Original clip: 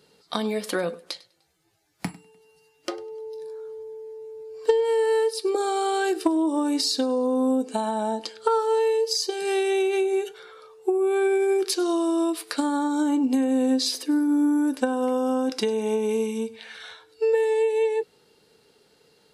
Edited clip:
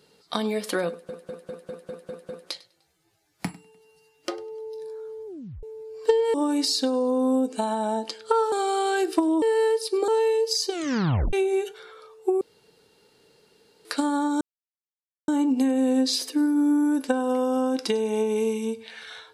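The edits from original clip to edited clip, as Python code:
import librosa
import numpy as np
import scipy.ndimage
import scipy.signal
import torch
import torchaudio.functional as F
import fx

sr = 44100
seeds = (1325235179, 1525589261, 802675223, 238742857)

y = fx.edit(x, sr, fx.stutter(start_s=0.89, slice_s=0.2, count=8),
    fx.tape_stop(start_s=3.86, length_s=0.37),
    fx.swap(start_s=4.94, length_s=0.66, other_s=6.5, other_length_s=2.18),
    fx.tape_stop(start_s=9.3, length_s=0.63),
    fx.room_tone_fill(start_s=11.01, length_s=1.44),
    fx.insert_silence(at_s=13.01, length_s=0.87), tone=tone)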